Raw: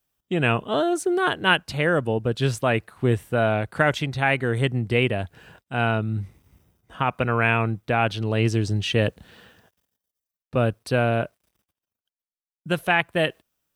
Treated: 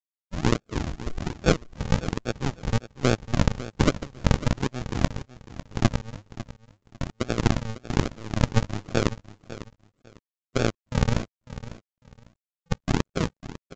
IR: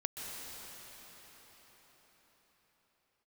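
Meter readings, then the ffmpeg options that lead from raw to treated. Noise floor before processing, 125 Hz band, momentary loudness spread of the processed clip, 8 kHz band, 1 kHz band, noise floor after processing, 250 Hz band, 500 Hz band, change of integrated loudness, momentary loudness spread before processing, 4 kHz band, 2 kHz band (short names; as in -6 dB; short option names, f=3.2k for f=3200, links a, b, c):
under -85 dBFS, -2.0 dB, 16 LU, +2.0 dB, -8.0 dB, under -85 dBFS, -1.5 dB, -7.0 dB, -4.5 dB, 6 LU, -5.5 dB, -11.0 dB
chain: -af "aeval=exprs='0.562*(cos(1*acos(clip(val(0)/0.562,-1,1)))-cos(1*PI/2))+0.00708*(cos(6*acos(clip(val(0)/0.562,-1,1)))-cos(6*PI/2))+0.0794*(cos(7*acos(clip(val(0)/0.562,-1,1)))-cos(7*PI/2))':c=same,aresample=16000,acrusher=samples=32:mix=1:aa=0.000001:lfo=1:lforange=32:lforate=1.2,aresample=44100,aecho=1:1:550|1100:0.178|0.0391" -ar 16000 -c:a pcm_mulaw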